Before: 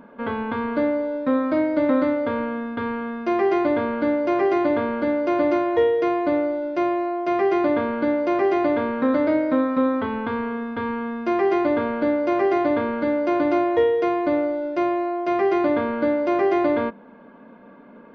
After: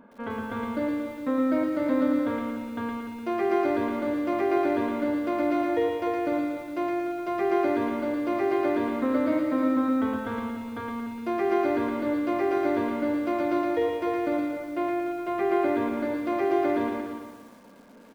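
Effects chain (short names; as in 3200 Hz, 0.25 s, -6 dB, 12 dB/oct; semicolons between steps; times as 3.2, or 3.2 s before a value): 14.52–15.86 LPF 4100 Hz 24 dB/oct; feedback echo 0.297 s, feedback 22%, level -9.5 dB; on a send at -17 dB: reverb RT60 0.85 s, pre-delay 3 ms; on the sum: lo-fi delay 0.115 s, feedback 55%, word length 8-bit, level -3 dB; gain -7 dB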